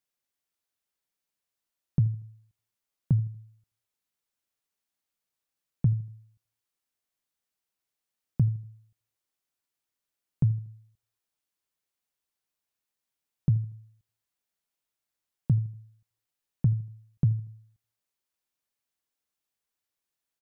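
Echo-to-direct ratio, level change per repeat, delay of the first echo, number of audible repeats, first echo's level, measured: -19.5 dB, -7.5 dB, 79 ms, 2, -20.5 dB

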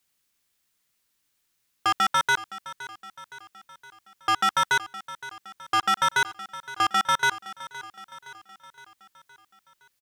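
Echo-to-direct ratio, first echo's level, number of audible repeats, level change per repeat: -14.5 dB, -16.0 dB, 4, -5.0 dB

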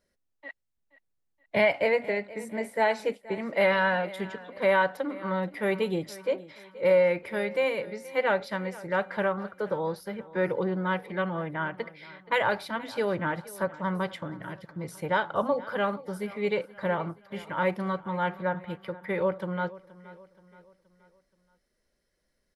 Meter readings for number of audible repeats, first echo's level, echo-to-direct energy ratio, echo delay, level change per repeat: 3, -19.0 dB, -18.0 dB, 475 ms, -6.5 dB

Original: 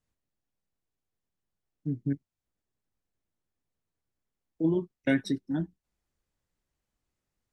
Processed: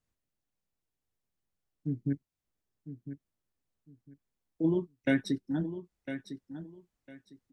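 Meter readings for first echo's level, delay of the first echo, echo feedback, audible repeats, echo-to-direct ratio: -11.0 dB, 1004 ms, 22%, 2, -11.0 dB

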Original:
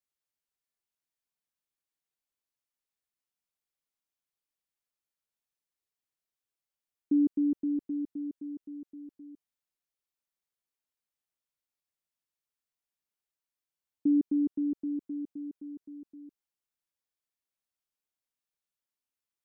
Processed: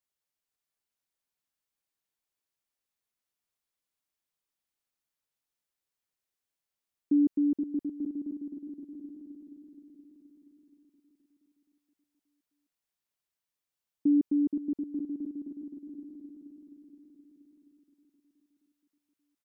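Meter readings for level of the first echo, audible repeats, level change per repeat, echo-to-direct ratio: -6.5 dB, 6, -5.0 dB, -5.0 dB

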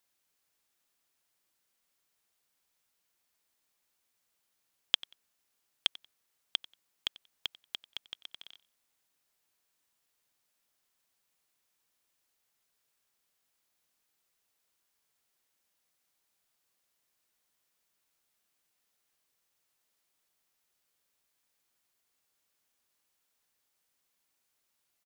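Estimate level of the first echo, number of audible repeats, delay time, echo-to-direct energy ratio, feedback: -20.5 dB, 2, 92 ms, -20.5 dB, 20%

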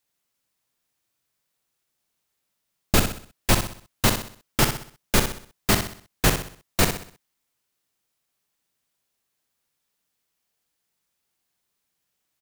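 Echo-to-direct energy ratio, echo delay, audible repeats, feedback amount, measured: -6.5 dB, 63 ms, 4, 41%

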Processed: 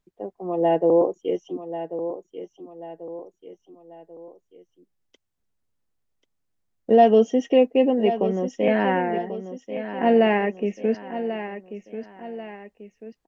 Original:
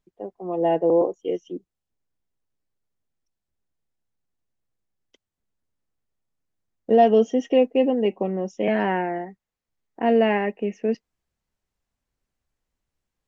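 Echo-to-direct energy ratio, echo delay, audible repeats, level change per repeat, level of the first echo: -10.0 dB, 1089 ms, 3, -7.0 dB, -11.0 dB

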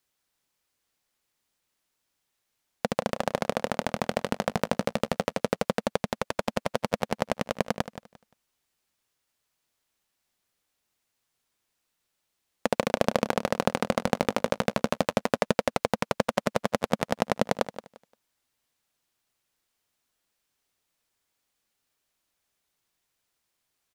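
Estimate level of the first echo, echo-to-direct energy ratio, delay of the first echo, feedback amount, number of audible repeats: -13.0 dB, -13.0 dB, 174 ms, 23%, 2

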